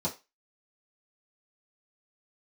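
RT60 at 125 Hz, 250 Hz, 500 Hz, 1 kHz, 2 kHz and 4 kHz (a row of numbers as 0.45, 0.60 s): 0.15, 0.20, 0.25, 0.25, 0.25, 0.25 s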